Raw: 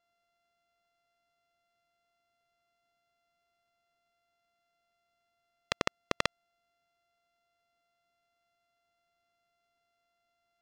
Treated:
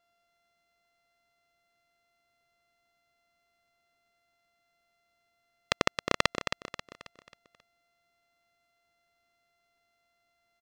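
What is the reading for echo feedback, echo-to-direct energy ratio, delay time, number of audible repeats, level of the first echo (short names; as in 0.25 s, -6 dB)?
41%, -6.5 dB, 0.269 s, 4, -7.5 dB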